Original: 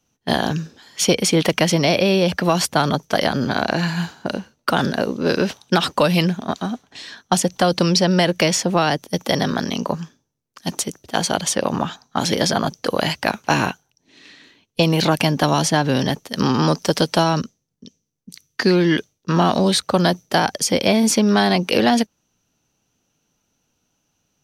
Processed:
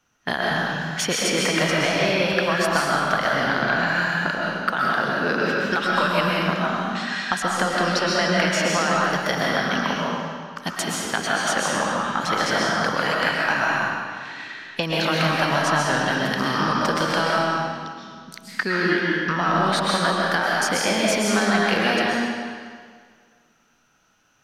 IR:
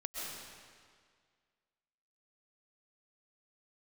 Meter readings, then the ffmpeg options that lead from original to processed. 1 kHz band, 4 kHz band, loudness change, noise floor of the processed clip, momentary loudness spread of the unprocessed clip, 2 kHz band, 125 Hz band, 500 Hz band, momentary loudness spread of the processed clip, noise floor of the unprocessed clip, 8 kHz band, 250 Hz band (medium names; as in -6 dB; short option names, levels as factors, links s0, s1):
0.0 dB, -2.5 dB, -2.5 dB, -61 dBFS, 10 LU, +5.0 dB, -7.0 dB, -3.5 dB, 8 LU, -73 dBFS, -4.5 dB, -6.0 dB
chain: -filter_complex "[0:a]equalizer=f=1500:w=0.92:g=14.5,acompressor=threshold=0.0794:ratio=3[s0];[1:a]atrim=start_sample=2205[s1];[s0][s1]afir=irnorm=-1:irlink=0,volume=1.12"